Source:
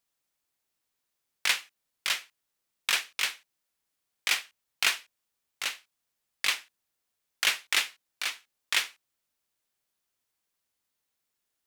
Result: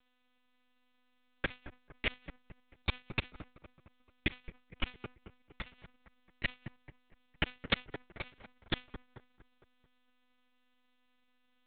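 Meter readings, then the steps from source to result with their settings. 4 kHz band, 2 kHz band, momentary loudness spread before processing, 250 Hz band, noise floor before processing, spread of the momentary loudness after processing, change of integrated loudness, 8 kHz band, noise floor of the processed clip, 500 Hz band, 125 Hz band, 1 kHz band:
-12.5 dB, -10.0 dB, 9 LU, +14.5 dB, -83 dBFS, 18 LU, -10.5 dB, under -40 dB, -73 dBFS, +4.0 dB, n/a, -7.5 dB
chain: flipped gate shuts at -24 dBFS, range -34 dB; half-wave rectifier; on a send: dark delay 0.226 s, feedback 43%, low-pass 1300 Hz, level -11 dB; on the sum: monotone LPC vocoder at 8 kHz 250 Hz; gain +13.5 dB

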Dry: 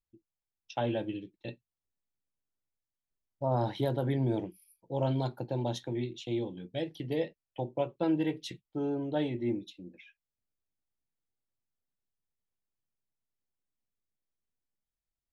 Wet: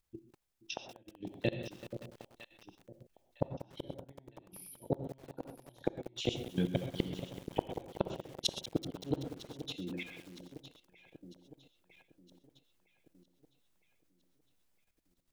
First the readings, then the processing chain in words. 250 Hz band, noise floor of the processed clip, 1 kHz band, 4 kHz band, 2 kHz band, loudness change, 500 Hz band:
-6.5 dB, -74 dBFS, -8.5 dB, +4.0 dB, -1.5 dB, -6.5 dB, -6.5 dB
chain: flipped gate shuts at -27 dBFS, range -41 dB; echo with dull and thin repeats by turns 0.479 s, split 830 Hz, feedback 69%, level -12 dB; non-linear reverb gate 0.15 s rising, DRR 8.5 dB; level quantiser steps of 11 dB; lo-fi delay 0.19 s, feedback 80%, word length 10-bit, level -13 dB; gain +15 dB

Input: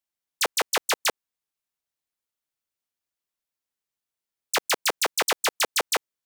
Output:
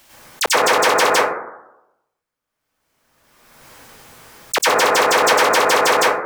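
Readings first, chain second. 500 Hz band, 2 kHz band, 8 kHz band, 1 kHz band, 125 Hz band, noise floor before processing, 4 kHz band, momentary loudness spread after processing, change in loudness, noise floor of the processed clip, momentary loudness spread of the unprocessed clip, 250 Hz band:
+15.0 dB, +11.0 dB, +6.0 dB, +14.5 dB, +16.0 dB, under -85 dBFS, +6.5 dB, 9 LU, +10.0 dB, -80 dBFS, 5 LU, +14.0 dB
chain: high shelf 4700 Hz -6.5 dB; plate-style reverb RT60 0.88 s, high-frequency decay 0.25×, pre-delay 85 ms, DRR -10 dB; backwards sustainer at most 31 dB/s; gain +1.5 dB

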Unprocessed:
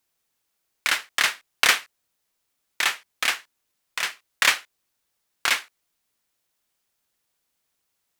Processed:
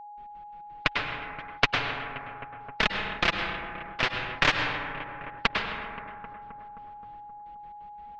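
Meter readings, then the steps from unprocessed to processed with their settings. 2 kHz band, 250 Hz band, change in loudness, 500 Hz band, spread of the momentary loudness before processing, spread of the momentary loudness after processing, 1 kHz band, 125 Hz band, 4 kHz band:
-3.5 dB, +11.0 dB, -5.5 dB, +5.5 dB, 10 LU, 19 LU, +1.5 dB, n/a, -5.5 dB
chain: rattling part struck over -45 dBFS, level -10 dBFS; LPF 3100 Hz 24 dB/oct; low shelf 180 Hz +5 dB; step gate "..x.x.x.xx.xx." 173 bpm -60 dB; flange 0.37 Hz, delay 4.3 ms, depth 3.6 ms, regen +15%; tilt -3 dB/oct; darkening echo 0.263 s, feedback 66%, low-pass 1800 Hz, level -22 dB; plate-style reverb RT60 1.2 s, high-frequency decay 0.45×, pre-delay 90 ms, DRR 9.5 dB; whine 830 Hz -52 dBFS; spectral compressor 2:1; gain +4 dB

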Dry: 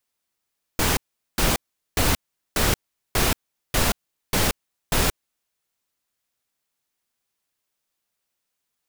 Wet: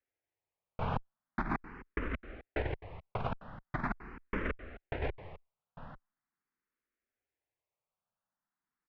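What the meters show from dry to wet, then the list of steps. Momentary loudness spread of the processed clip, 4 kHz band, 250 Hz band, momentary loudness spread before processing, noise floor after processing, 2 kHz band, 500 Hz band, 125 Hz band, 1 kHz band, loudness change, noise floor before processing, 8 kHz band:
15 LU, -28.5 dB, -11.0 dB, 8 LU, under -85 dBFS, -13.5 dB, -11.0 dB, -11.5 dB, -10.5 dB, -15.0 dB, -80 dBFS, under -40 dB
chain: LPF 2100 Hz 24 dB/oct; on a send: echo 0.85 s -19.5 dB; on the sum: negative-ratio compressor -24 dBFS, ratio -0.5; endless phaser +0.42 Hz; gain -6 dB

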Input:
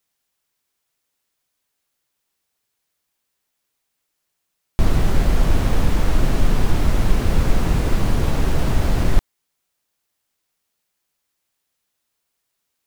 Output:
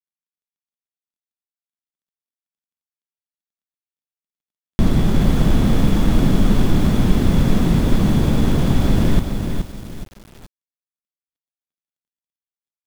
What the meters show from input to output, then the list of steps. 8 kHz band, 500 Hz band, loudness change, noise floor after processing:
0.0 dB, +2.5 dB, +3.5 dB, under -85 dBFS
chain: switching dead time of 0.23 ms; small resonant body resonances 200/3400 Hz, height 11 dB, ringing for 20 ms; lo-fi delay 0.424 s, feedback 35%, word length 6-bit, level -6 dB; gain -1.5 dB

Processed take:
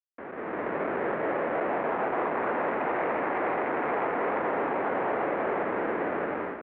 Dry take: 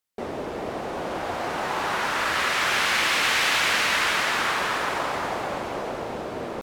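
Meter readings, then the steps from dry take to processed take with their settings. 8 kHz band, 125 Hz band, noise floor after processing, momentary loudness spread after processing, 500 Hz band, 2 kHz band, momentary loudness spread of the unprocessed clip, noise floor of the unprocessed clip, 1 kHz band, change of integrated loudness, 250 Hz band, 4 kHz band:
under -40 dB, -4.5 dB, -40 dBFS, 3 LU, +3.0 dB, -10.0 dB, 12 LU, -33 dBFS, -2.5 dB, -5.0 dB, +2.0 dB, under -25 dB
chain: median filter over 25 samples; spring tank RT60 3.3 s, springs 40/46 ms, chirp 80 ms, DRR 12.5 dB; limiter -27.5 dBFS, peak gain reduction 9 dB; Schmitt trigger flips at -38.5 dBFS; mistuned SSB -160 Hz 500–2200 Hz; AGC gain up to 11 dB

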